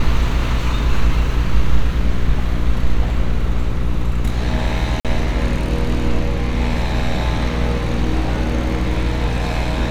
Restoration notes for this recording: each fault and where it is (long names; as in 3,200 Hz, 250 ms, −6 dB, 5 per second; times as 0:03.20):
mains buzz 60 Hz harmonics 9 −21 dBFS
0:05.00–0:05.05: drop-out 47 ms